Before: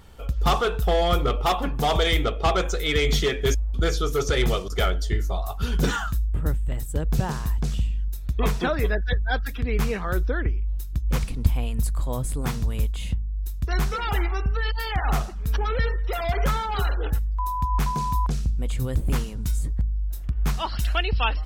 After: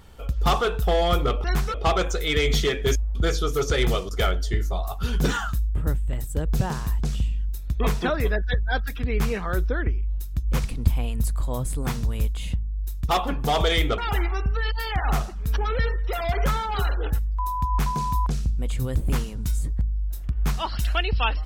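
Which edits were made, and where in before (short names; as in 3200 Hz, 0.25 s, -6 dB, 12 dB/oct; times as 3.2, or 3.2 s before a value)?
1.44–2.33 swap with 13.68–13.98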